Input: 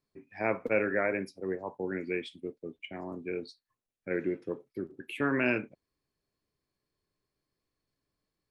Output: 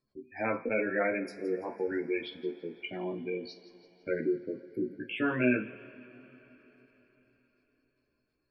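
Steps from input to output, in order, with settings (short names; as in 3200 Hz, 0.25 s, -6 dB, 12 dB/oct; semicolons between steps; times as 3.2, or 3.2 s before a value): chorus voices 2, 0.49 Hz, delay 15 ms, depth 2.2 ms; in parallel at -1 dB: compressor, threshold -39 dBFS, peak gain reduction 14.5 dB; on the sum: spectral gate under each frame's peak -20 dB strong; on a send: thin delay 0.167 s, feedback 51%, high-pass 3900 Hz, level -12.5 dB; on the sum: two-slope reverb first 0.3 s, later 4.4 s, from -20 dB, DRR 7.5 dB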